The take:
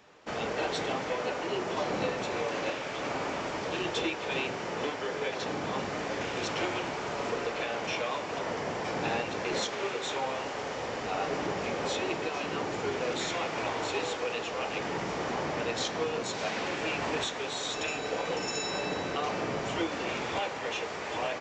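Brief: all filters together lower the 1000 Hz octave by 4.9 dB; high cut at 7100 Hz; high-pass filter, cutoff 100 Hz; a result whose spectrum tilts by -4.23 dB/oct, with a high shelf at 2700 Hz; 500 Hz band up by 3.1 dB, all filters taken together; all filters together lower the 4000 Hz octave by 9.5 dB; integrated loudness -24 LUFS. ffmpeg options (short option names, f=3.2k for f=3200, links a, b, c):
-af "highpass=100,lowpass=7.1k,equalizer=f=500:t=o:g=6,equalizer=f=1k:t=o:g=-8.5,highshelf=f=2.7k:g=-4,equalizer=f=4k:t=o:g=-8.5,volume=9dB"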